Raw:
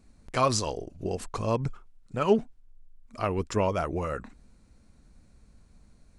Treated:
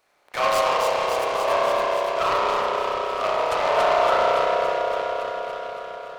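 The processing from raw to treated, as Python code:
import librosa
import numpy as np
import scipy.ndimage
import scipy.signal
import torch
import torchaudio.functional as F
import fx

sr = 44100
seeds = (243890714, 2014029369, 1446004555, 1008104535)

y = np.clip(10.0 ** (24.5 / 20.0) * x, -1.0, 1.0) / 10.0 ** (24.5 / 20.0)
y = scipy.signal.sosfilt(scipy.signal.butter(4, 600.0, 'highpass', fs=sr, output='sos'), y)
y = fx.peak_eq(y, sr, hz=6500.0, db=-9.5, octaves=0.86)
y = fx.echo_alternate(y, sr, ms=141, hz=960.0, feedback_pct=85, wet_db=-2.0)
y = fx.rev_spring(y, sr, rt60_s=2.6, pass_ms=(31,), chirp_ms=45, drr_db=-6.0)
y = fx.noise_mod_delay(y, sr, seeds[0], noise_hz=1700.0, depth_ms=0.034)
y = y * 10.0 ** (5.5 / 20.0)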